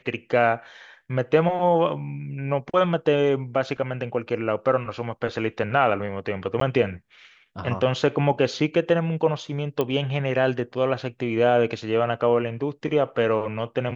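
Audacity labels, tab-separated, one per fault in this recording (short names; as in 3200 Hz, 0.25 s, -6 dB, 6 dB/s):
6.600000	6.610000	gap 13 ms
9.810000	9.810000	pop -12 dBFS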